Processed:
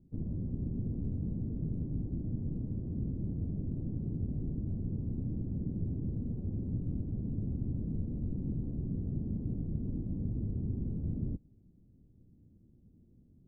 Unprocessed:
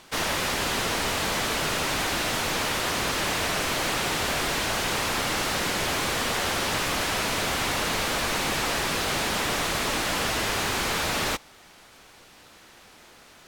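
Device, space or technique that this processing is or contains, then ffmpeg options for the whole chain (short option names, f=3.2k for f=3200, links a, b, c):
the neighbour's flat through the wall: -af "lowpass=f=250:w=0.5412,lowpass=f=250:w=1.3066,equalizer=f=100:t=o:w=0.93:g=5"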